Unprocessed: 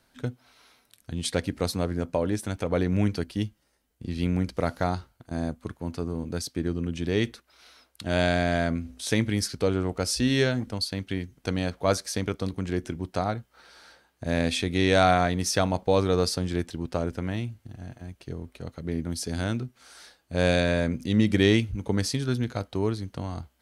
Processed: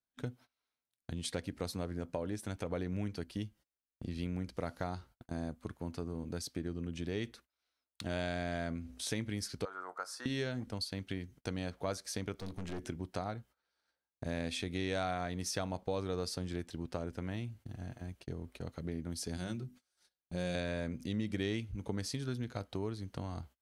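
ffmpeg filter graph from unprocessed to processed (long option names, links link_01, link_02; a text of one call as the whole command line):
ffmpeg -i in.wav -filter_complex "[0:a]asettb=1/sr,asplit=3[link_01][link_02][link_03];[link_01]atrim=end=9.654[link_04];[link_02]atrim=start=9.65:end=10.26,asetpts=PTS-STARTPTS,afade=type=in:duration=0.004:curve=qsin,afade=type=out:start_time=0.606:duration=0.004:curve=qsin,highpass=1100,highshelf=frequency=1900:width_type=q:width=3:gain=-11.5,asplit=2[link_05][link_06];[link_06]adelay=22,volume=-13.5dB[link_07];[link_05][link_07]amix=inputs=2:normalize=0,atrim=end_sample=26901[link_08];[link_03]atrim=start=10.256[link_09];[link_04][link_08]acrossfade=duration=0.004:curve1=hsin:curve2=qsin[link_10];[link_10][link_09]acrossfade=duration=0.004:curve1=qsin:curve2=hsin,asettb=1/sr,asplit=3[link_11][link_12][link_13];[link_11]atrim=end=12.334[link_14];[link_12]atrim=start=12.33:end=12.82,asetpts=PTS-STARTPTS,afade=type=in:duration=0.004:curve=qsin,afade=type=out:start_time=0.486:duration=0.004:curve=qsin,acompressor=mode=upward:threshold=-31dB:ratio=2.5:attack=3.2:release=140:knee=2.83:detection=peak,aeval=exprs='(tanh(35.5*val(0)+0.5)-tanh(0.5))/35.5':channel_layout=same[link_15];[link_13]atrim=start=12.816[link_16];[link_14][link_15]acrossfade=duration=0.004:curve1=hsin:curve2=qsin[link_17];[link_17][link_16]acrossfade=duration=0.004:curve1=qsin:curve2=hsin,asettb=1/sr,asplit=3[link_18][link_19][link_20];[link_18]atrim=end=19.374[link_21];[link_19]atrim=start=19.37:end=20.55,asetpts=PTS-STARTPTS,afade=type=in:duration=0.004:curve=qsin,afade=type=out:start_time=1.176:duration=0.004:curve=qsin,equalizer=frequency=1100:width=0.33:gain=-6.5,bandreject=frequency=50:width_type=h:width=6,bandreject=frequency=100:width_type=h:width=6,bandreject=frequency=150:width_type=h:width=6,bandreject=frequency=200:width_type=h:width=6,bandreject=frequency=250:width_type=h:width=6,bandreject=frequency=300:width_type=h:width=6,aecho=1:1:5.5:0.49,atrim=end_sample=52038[link_22];[link_20]atrim=start=20.546[link_23];[link_21][link_22]acrossfade=duration=0.004:curve1=hsin:curve2=qsin[link_24];[link_24][link_23]acrossfade=duration=0.004:curve1=qsin:curve2=hsin,agate=range=-30dB:threshold=-47dB:ratio=16:detection=peak,acompressor=threshold=-36dB:ratio=2.5,volume=-2.5dB" out.wav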